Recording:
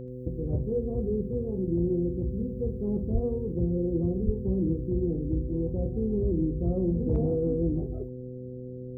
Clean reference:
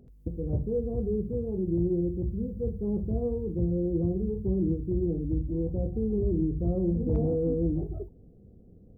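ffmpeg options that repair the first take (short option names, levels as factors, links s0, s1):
-filter_complex "[0:a]bandreject=f=126.1:t=h:w=4,bandreject=f=252.2:t=h:w=4,bandreject=f=378.3:t=h:w=4,bandreject=f=504.4:t=h:w=4,asplit=3[s0][s1][s2];[s0]afade=t=out:st=3.13:d=0.02[s3];[s1]highpass=f=140:w=0.5412,highpass=f=140:w=1.3066,afade=t=in:st=3.13:d=0.02,afade=t=out:st=3.25:d=0.02[s4];[s2]afade=t=in:st=3.25:d=0.02[s5];[s3][s4][s5]amix=inputs=3:normalize=0,asplit=3[s6][s7][s8];[s6]afade=t=out:st=4.25:d=0.02[s9];[s7]highpass=f=140:w=0.5412,highpass=f=140:w=1.3066,afade=t=in:st=4.25:d=0.02,afade=t=out:st=4.37:d=0.02[s10];[s8]afade=t=in:st=4.37:d=0.02[s11];[s9][s10][s11]amix=inputs=3:normalize=0"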